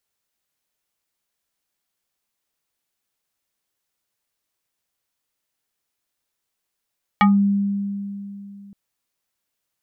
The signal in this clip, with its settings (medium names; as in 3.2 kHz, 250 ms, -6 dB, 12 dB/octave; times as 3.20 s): FM tone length 1.52 s, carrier 200 Hz, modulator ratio 5.17, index 2.2, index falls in 0.20 s exponential, decay 3.02 s, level -10 dB